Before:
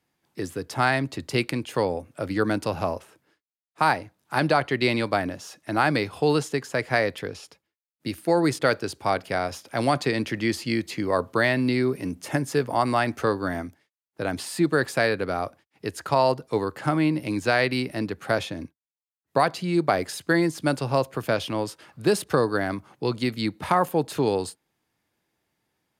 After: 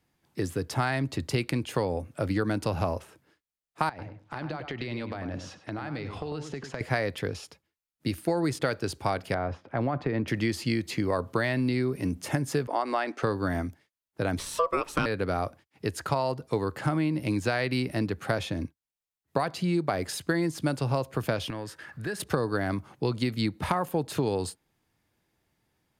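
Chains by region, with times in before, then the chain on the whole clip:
0:03.89–0:06.81: low-pass filter 4,700 Hz + downward compressor 16 to 1, threshold −32 dBFS + feedback echo with a low-pass in the loop 99 ms, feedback 18%, low-pass 2,200 Hz, level −7 dB
0:09.34–0:10.28: low-pass filter 1,600 Hz + downward compressor 2 to 1, threshold −25 dBFS
0:12.67–0:13.23: high-pass filter 300 Hz 24 dB per octave + high-frequency loss of the air 80 metres
0:14.39–0:15.06: high-pass filter 200 Hz 24 dB per octave + low-shelf EQ 480 Hz +11.5 dB + ring modulation 830 Hz
0:21.50–0:22.20: parametric band 1,700 Hz +14.5 dB 0.42 octaves + downward compressor 2 to 1, threshold −42 dBFS
whole clip: low-shelf EQ 110 Hz +12 dB; downward compressor, threshold −23 dBFS

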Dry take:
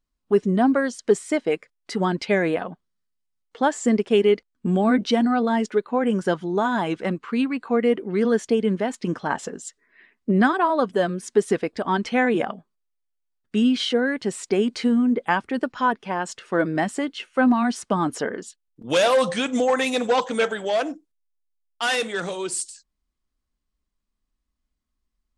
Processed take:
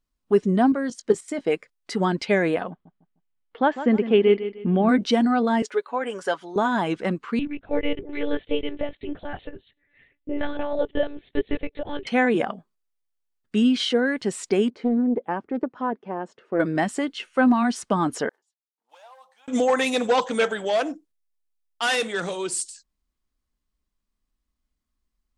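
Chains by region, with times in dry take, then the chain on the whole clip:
0:00.72–0:01.41: parametric band 260 Hz +5 dB 0.62 octaves + output level in coarse steps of 13 dB + double-tracking delay 18 ms −13 dB
0:02.70–0:04.89: low-pass filter 3,300 Hz 24 dB per octave + repeating echo 152 ms, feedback 32%, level −12 dB
0:05.62–0:06.56: high-pass filter 520 Hz + comb filter 7.1 ms, depth 37%
0:07.39–0:12.07: phaser with its sweep stopped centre 460 Hz, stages 4 + one-pitch LPC vocoder at 8 kHz 290 Hz
0:14.70–0:16.60: resonant band-pass 370 Hz, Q 0.89 + highs frequency-modulated by the lows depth 0.26 ms
0:18.29–0:19.48: one scale factor per block 5 bits + resonant band-pass 840 Hz, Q 5.9 + first difference
whole clip: no processing

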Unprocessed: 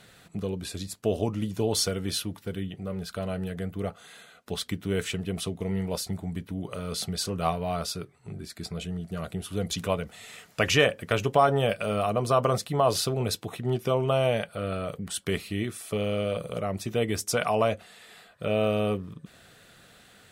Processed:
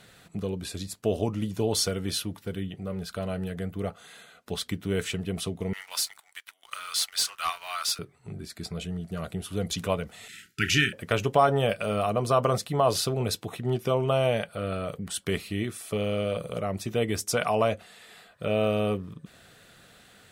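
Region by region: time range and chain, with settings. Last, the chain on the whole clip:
0:05.73–0:07.99: high-pass filter 1,200 Hz 24 dB per octave + leveller curve on the samples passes 2
0:10.28–0:10.93: downward expander −52 dBFS + linear-phase brick-wall band-stop 410–1,300 Hz + double-tracking delay 34 ms −11 dB
whole clip: no processing

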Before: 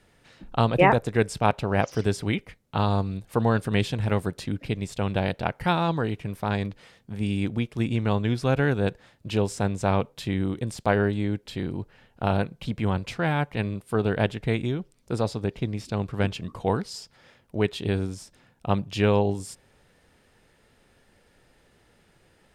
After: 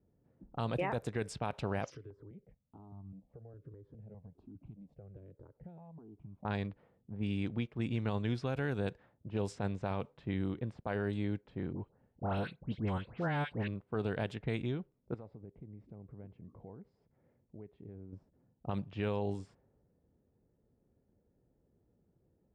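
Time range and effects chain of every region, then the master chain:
0:01.90–0:06.45: downward compressor 12 to 1, threshold −34 dBFS + step-sequenced phaser 4.9 Hz 210–1,800 Hz
0:11.73–0:13.68: notch filter 2,400 Hz, Q 19 + all-pass dispersion highs, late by 111 ms, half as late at 1,900 Hz
0:15.14–0:18.13: parametric band 2,100 Hz +8.5 dB 0.31 octaves + downward compressor 4 to 1, threshold −39 dBFS
whole clip: high-pass filter 44 Hz; low-pass that shuts in the quiet parts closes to 380 Hz, open at −18.5 dBFS; brickwall limiter −16.5 dBFS; level −8.5 dB

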